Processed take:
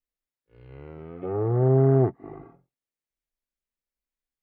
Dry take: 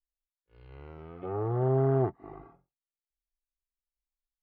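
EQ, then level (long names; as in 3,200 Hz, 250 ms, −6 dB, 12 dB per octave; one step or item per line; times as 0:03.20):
octave-band graphic EQ 125/250/500/2,000 Hz +8/+8/+7/+6 dB
−2.5 dB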